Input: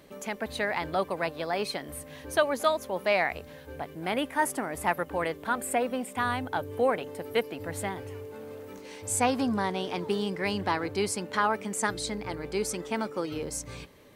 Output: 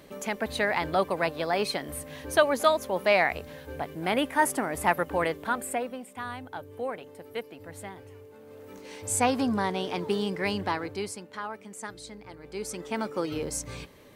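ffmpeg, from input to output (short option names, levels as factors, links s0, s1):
-af "volume=16.8,afade=t=out:st=5.23:d=0.77:silence=0.281838,afade=t=in:st=8.44:d=0.51:silence=0.354813,afade=t=out:st=10.46:d=0.82:silence=0.266073,afade=t=in:st=12.41:d=0.82:silence=0.237137"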